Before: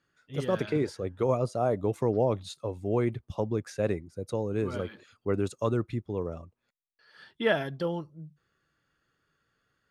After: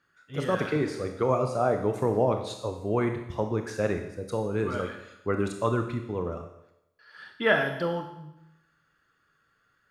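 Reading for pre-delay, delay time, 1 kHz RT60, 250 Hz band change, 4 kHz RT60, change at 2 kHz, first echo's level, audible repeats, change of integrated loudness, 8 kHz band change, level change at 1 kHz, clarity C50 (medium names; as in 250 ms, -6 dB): 25 ms, no echo, 0.85 s, +1.5 dB, 0.85 s, +7.0 dB, no echo, no echo, +2.0 dB, +2.5 dB, +5.0 dB, 7.5 dB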